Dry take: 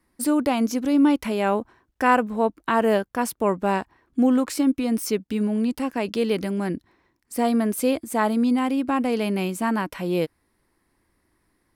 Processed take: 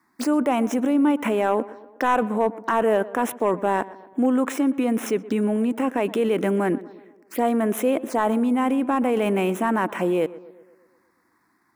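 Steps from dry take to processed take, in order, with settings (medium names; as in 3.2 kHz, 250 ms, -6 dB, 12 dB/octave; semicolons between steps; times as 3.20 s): median filter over 5 samples; high-pass 270 Hz 12 dB/octave; in parallel at 0 dB: compressor with a negative ratio -30 dBFS, ratio -1; on the sum: hard clipper -11.5 dBFS, distortion -20 dB; touch-sensitive phaser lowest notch 500 Hz, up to 4.6 kHz, full sweep at -22 dBFS; tape echo 121 ms, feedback 60%, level -16 dB, low-pass 1.7 kHz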